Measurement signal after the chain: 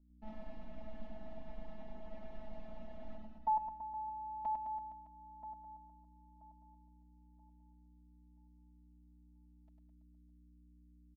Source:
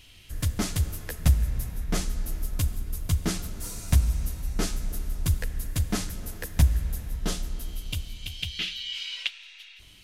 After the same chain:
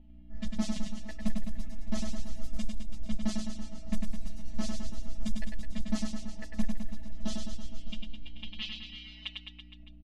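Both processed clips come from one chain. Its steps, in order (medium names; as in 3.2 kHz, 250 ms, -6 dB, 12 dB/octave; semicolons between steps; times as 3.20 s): robot voice 216 Hz; band-stop 1.1 kHz, Q 5; reverb removal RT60 0.87 s; peaking EQ 1.7 kHz +13.5 dB 0.29 oct; saturation -15.5 dBFS; hum 60 Hz, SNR 22 dB; level-controlled noise filter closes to 640 Hz, open at -25.5 dBFS; distance through air 84 m; static phaser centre 430 Hz, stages 6; reverse bouncing-ball echo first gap 100 ms, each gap 1.1×, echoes 5; trim +1.5 dB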